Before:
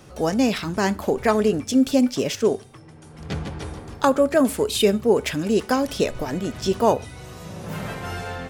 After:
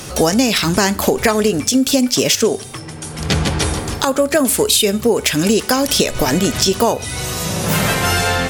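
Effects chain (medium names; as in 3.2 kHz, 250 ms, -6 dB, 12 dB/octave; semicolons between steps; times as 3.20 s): peaking EQ 14 kHz +12.5 dB 2.7 oct; compression 12:1, threshold -24 dBFS, peak gain reduction 14 dB; loudness maximiser +14.5 dB; trim -1 dB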